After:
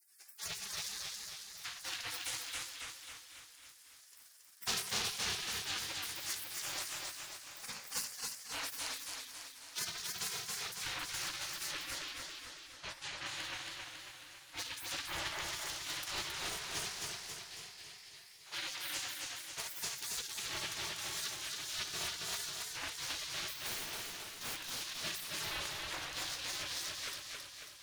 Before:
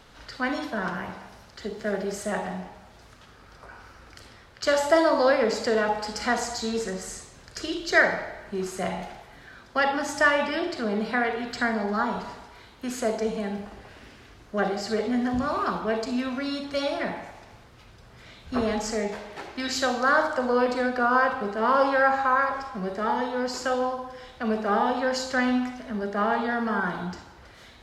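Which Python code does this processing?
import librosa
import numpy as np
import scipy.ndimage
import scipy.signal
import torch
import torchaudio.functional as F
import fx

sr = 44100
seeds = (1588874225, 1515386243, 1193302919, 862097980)

y = fx.lower_of_two(x, sr, delay_ms=0.3)
y = fx.spec_gate(y, sr, threshold_db=-30, keep='weak')
y = fx.rider(y, sr, range_db=4, speed_s=0.5)
y = fx.air_absorb(y, sr, metres=99.0, at=(11.71, 13.26))
y = fx.overflow_wrap(y, sr, gain_db=40.0, at=(23.58, 24.71))
y = fx.hum_notches(y, sr, base_hz=60, count=3)
y = y + 10.0 ** (-18.5 / 20.0) * np.pad(y, (int(769 * sr / 1000.0), 0))[:len(y)]
y = fx.spec_box(y, sr, start_s=17.23, length_s=1.17, low_hz=1700.0, high_hz=5400.0, gain_db=9)
y = fx.notch(y, sr, hz=7700.0, q=24.0)
y = fx.echo_warbled(y, sr, ms=273, feedback_pct=57, rate_hz=2.8, cents=105, wet_db=-3)
y = y * 10.0 ** (4.0 / 20.0)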